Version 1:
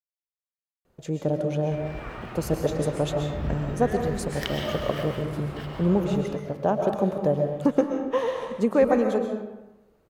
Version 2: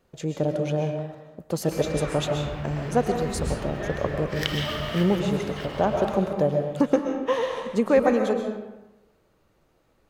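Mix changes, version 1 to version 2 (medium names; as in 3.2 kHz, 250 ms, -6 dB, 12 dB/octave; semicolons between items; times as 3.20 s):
speech: entry -0.85 s; master: add peaking EQ 3.8 kHz +5 dB 2.9 oct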